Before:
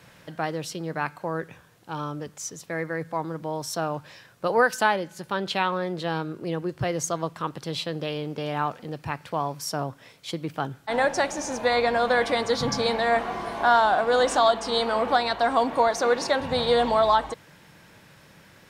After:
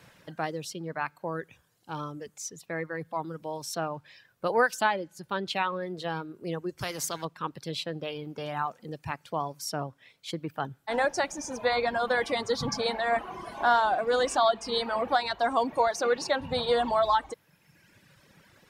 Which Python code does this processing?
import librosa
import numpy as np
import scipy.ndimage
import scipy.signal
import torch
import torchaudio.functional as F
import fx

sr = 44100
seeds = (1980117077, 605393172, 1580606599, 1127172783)

y = fx.dereverb_blind(x, sr, rt60_s=1.4)
y = fx.spectral_comp(y, sr, ratio=2.0, at=(6.78, 7.25))
y = y * librosa.db_to_amplitude(-3.0)